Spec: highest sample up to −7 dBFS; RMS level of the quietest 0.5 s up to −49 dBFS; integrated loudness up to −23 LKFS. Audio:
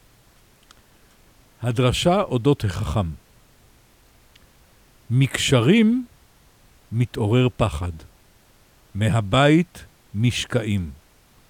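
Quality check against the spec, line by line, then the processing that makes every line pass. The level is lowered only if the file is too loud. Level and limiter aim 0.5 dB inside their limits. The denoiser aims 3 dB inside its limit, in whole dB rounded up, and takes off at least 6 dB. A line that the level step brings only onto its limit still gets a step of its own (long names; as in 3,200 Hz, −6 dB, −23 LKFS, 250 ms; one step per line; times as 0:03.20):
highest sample −5.5 dBFS: out of spec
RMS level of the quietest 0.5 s −55 dBFS: in spec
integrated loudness −21.0 LKFS: out of spec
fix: level −2.5 dB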